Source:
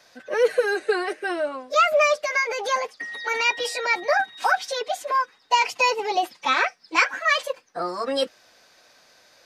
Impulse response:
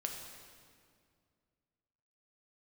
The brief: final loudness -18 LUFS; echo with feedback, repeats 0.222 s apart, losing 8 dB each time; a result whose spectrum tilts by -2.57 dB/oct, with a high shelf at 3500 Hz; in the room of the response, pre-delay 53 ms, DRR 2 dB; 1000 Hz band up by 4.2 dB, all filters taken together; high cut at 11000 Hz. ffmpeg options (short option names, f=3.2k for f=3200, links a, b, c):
-filter_complex "[0:a]lowpass=11k,equalizer=f=1k:t=o:g=5.5,highshelf=f=3.5k:g=-4.5,aecho=1:1:222|444|666|888|1110:0.398|0.159|0.0637|0.0255|0.0102,asplit=2[a][b];[1:a]atrim=start_sample=2205,adelay=53[c];[b][c]afir=irnorm=-1:irlink=0,volume=-2.5dB[d];[a][d]amix=inputs=2:normalize=0,volume=0.5dB"